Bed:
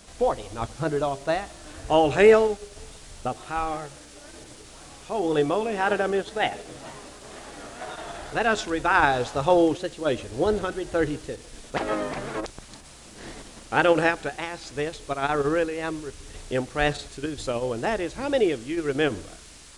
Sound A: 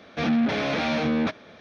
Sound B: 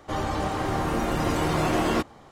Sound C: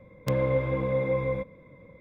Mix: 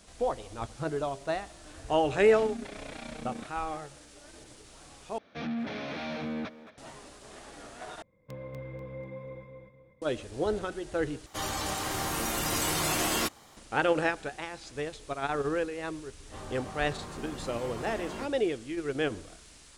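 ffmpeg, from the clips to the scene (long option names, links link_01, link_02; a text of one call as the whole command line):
ffmpeg -i bed.wav -i cue0.wav -i cue1.wav -i cue2.wav -filter_complex "[1:a]asplit=2[link_01][link_02];[2:a]asplit=2[link_03][link_04];[0:a]volume=-6.5dB[link_05];[link_01]tremolo=f=30:d=0.824[link_06];[link_02]asplit=2[link_07][link_08];[link_08]adelay=220,highpass=300,lowpass=3400,asoftclip=type=hard:threshold=-25dB,volume=-10dB[link_09];[link_07][link_09]amix=inputs=2:normalize=0[link_10];[3:a]aecho=1:1:244|488|732|976:0.631|0.208|0.0687|0.0227[link_11];[link_03]crystalizer=i=8:c=0[link_12];[link_04]asplit=2[link_13][link_14];[link_14]adelay=21,volume=-4dB[link_15];[link_13][link_15]amix=inputs=2:normalize=0[link_16];[link_05]asplit=4[link_17][link_18][link_19][link_20];[link_17]atrim=end=5.184[link_21];[link_10]atrim=end=1.6,asetpts=PTS-STARTPTS,volume=-11.5dB[link_22];[link_18]atrim=start=6.776:end=8.024[link_23];[link_11]atrim=end=2,asetpts=PTS-STARTPTS,volume=-16.5dB[link_24];[link_19]atrim=start=10.016:end=11.264[link_25];[link_12]atrim=end=2.31,asetpts=PTS-STARTPTS,volume=-9.5dB[link_26];[link_20]atrim=start=13.566[link_27];[link_06]atrim=end=1.6,asetpts=PTS-STARTPTS,volume=-14dB,afade=type=in:duration=0.004:curve=hsin,afade=type=out:start_time=1.596:duration=0.004:curve=hsin,adelay=2160[link_28];[link_16]atrim=end=2.31,asetpts=PTS-STARTPTS,volume=-17dB,afade=type=in:duration=0.004:curve=hsin,afade=type=out:start_time=2.306:duration=0.004:curve=hsin,adelay=16230[link_29];[link_21][link_22]acrossfade=duration=0.004:curve1=hsin:curve2=hsin[link_30];[link_30][link_23]acrossfade=duration=0.004:curve1=hsin:curve2=hsin[link_31];[link_31][link_24]acrossfade=duration=0.004:curve1=hsin:curve2=hsin[link_32];[link_32][link_25]acrossfade=duration=0.004:curve1=hsin:curve2=hsin[link_33];[link_33][link_26]acrossfade=duration=0.004:curve1=hsin:curve2=hsin[link_34];[link_34][link_27]acrossfade=duration=0.004:curve1=hsin:curve2=hsin[link_35];[link_35][link_28][link_29]amix=inputs=3:normalize=0" out.wav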